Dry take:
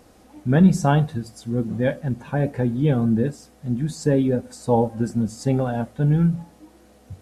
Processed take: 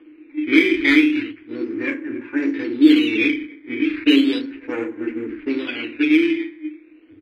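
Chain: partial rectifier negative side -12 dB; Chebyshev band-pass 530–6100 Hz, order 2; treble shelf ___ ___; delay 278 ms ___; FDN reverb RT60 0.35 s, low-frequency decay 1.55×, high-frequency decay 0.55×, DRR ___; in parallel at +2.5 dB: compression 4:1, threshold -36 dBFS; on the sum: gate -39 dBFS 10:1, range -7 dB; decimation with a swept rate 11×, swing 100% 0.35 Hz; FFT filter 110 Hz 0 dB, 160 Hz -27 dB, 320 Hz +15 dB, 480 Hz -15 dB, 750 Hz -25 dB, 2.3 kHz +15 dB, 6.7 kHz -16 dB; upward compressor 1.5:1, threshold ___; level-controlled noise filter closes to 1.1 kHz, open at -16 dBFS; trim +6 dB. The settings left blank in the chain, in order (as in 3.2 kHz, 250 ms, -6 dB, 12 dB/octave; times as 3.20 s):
2.3 kHz, -12 dB, -21.5 dB, 1.5 dB, -41 dBFS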